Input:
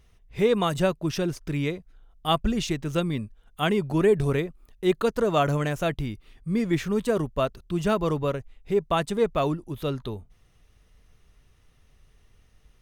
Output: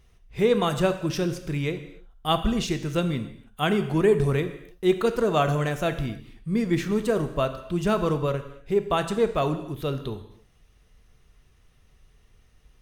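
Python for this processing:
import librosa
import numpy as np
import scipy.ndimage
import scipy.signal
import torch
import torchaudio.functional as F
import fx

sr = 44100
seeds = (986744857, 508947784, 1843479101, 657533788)

y = fx.rev_gated(x, sr, seeds[0], gate_ms=320, shape='falling', drr_db=8.0)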